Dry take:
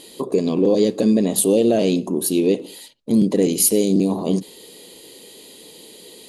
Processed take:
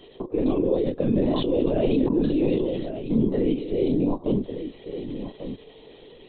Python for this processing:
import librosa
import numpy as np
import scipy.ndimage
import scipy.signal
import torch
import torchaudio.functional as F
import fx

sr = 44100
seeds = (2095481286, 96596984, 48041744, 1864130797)

y = fx.level_steps(x, sr, step_db=22)
y = fx.high_shelf(y, sr, hz=2500.0, db=-10.5)
y = fx.doubler(y, sr, ms=27.0, db=-4.0)
y = y + 10.0 ** (-10.0 / 20.0) * np.pad(y, (int(1145 * sr / 1000.0), 0))[:len(y)]
y = fx.lpc_vocoder(y, sr, seeds[0], excitation='whisper', order=16)
y = fx.peak_eq(y, sr, hz=65.0, db=-12.5, octaves=1.3)
y = fx.sustainer(y, sr, db_per_s=27.0, at=(1.17, 3.28))